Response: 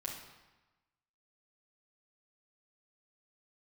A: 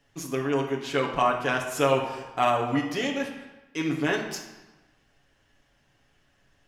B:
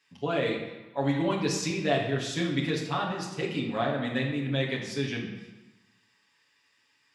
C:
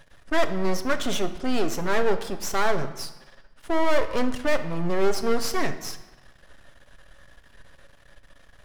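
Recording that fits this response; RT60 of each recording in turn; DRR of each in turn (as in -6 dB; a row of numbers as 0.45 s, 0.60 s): B; 1.1 s, 1.1 s, 1.1 s; 0.0 dB, -4.5 dB, 7.5 dB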